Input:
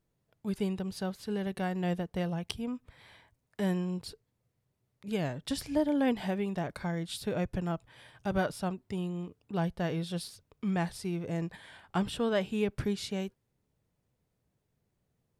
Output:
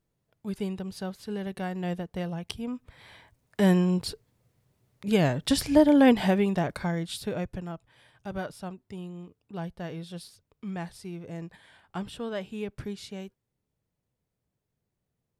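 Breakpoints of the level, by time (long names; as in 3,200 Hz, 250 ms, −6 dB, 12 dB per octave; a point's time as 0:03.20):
0:02.42 0 dB
0:03.72 +9.5 dB
0:06.26 +9.5 dB
0:07.25 +2 dB
0:07.72 −4.5 dB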